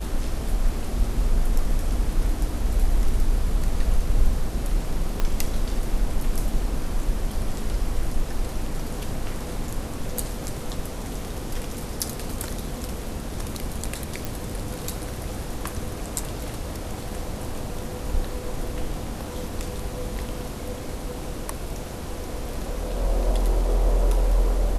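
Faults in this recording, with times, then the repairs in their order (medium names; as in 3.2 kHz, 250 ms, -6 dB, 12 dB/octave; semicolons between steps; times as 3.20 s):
5.20 s: pop -11 dBFS
14.25 s: pop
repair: de-click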